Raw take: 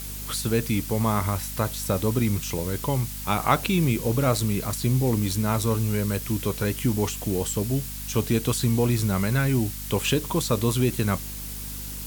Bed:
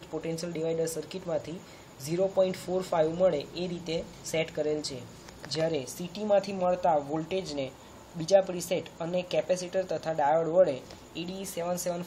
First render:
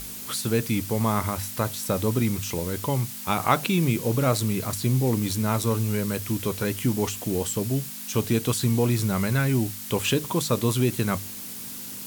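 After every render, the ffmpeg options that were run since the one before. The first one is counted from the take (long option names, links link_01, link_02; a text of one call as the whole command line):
ffmpeg -i in.wav -af "bandreject=frequency=50:width_type=h:width=6,bandreject=frequency=100:width_type=h:width=6,bandreject=frequency=150:width_type=h:width=6" out.wav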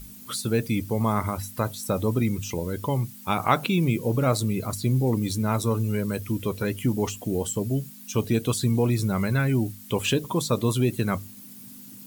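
ffmpeg -i in.wav -af "afftdn=noise_reduction=13:noise_floor=-37" out.wav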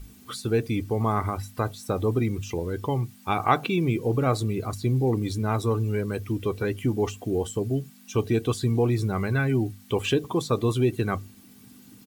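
ffmpeg -i in.wav -af "lowpass=frequency=3100:poles=1,aecho=1:1:2.6:0.41" out.wav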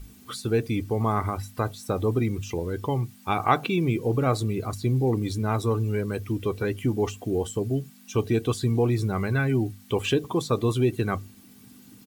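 ffmpeg -i in.wav -af anull out.wav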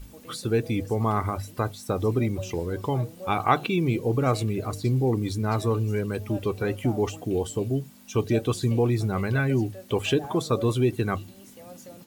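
ffmpeg -i in.wav -i bed.wav -filter_complex "[1:a]volume=-14.5dB[link_01];[0:a][link_01]amix=inputs=2:normalize=0" out.wav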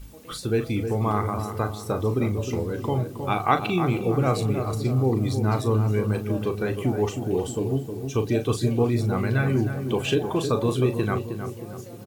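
ffmpeg -i in.wav -filter_complex "[0:a]asplit=2[link_01][link_02];[link_02]adelay=38,volume=-9.5dB[link_03];[link_01][link_03]amix=inputs=2:normalize=0,asplit=2[link_04][link_05];[link_05]adelay=313,lowpass=frequency=1200:poles=1,volume=-7dB,asplit=2[link_06][link_07];[link_07]adelay=313,lowpass=frequency=1200:poles=1,volume=0.54,asplit=2[link_08][link_09];[link_09]adelay=313,lowpass=frequency=1200:poles=1,volume=0.54,asplit=2[link_10][link_11];[link_11]adelay=313,lowpass=frequency=1200:poles=1,volume=0.54,asplit=2[link_12][link_13];[link_13]adelay=313,lowpass=frequency=1200:poles=1,volume=0.54,asplit=2[link_14][link_15];[link_15]adelay=313,lowpass=frequency=1200:poles=1,volume=0.54,asplit=2[link_16][link_17];[link_17]adelay=313,lowpass=frequency=1200:poles=1,volume=0.54[link_18];[link_04][link_06][link_08][link_10][link_12][link_14][link_16][link_18]amix=inputs=8:normalize=0" out.wav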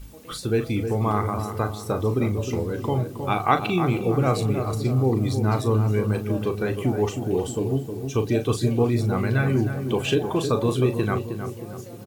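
ffmpeg -i in.wav -af "volume=1dB" out.wav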